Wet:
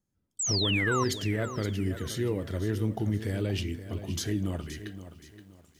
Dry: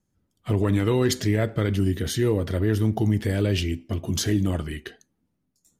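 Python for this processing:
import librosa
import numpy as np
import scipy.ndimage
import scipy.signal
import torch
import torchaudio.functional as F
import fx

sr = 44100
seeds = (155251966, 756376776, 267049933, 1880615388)

y = fx.spec_paint(x, sr, seeds[0], shape='fall', start_s=0.39, length_s=0.65, low_hz=980.0, high_hz=8200.0, level_db=-22.0)
y = fx.echo_crushed(y, sr, ms=523, feedback_pct=35, bits=8, wet_db=-12)
y = y * librosa.db_to_amplitude(-7.5)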